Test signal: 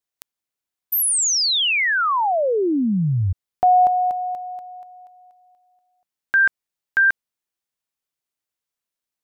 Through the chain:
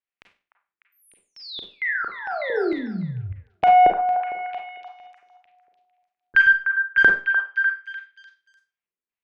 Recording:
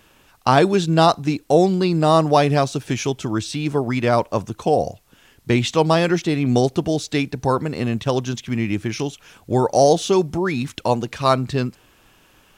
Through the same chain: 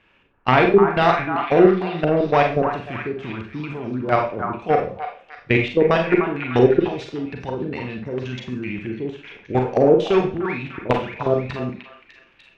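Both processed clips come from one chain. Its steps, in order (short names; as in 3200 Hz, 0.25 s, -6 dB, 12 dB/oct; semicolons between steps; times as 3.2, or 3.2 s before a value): level quantiser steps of 16 dB; one-sided clip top -15.5 dBFS; LFO low-pass square 2.2 Hz 410–2400 Hz; on a send: delay with a stepping band-pass 0.299 s, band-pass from 1100 Hz, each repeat 0.7 oct, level -4 dB; on the sum: Schroeder reverb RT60 0.35 s, combs from 32 ms, DRR 2.5 dB; gain +1 dB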